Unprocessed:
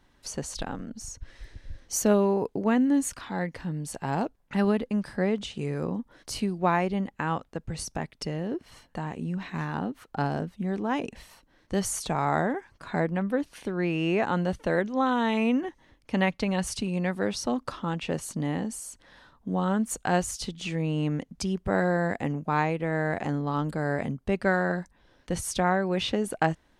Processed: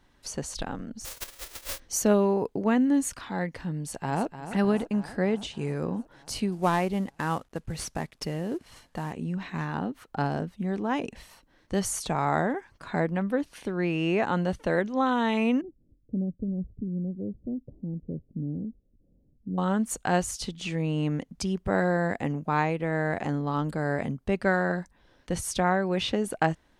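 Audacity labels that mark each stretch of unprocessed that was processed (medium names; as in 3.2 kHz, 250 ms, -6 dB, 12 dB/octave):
1.040000	1.780000	formants flattened exponent 0.1
3.790000	4.390000	echo throw 300 ms, feedback 70%, level -11 dB
6.520000	9.130000	CVSD coder 64 kbps
15.610000	19.580000	Gaussian low-pass sigma 24 samples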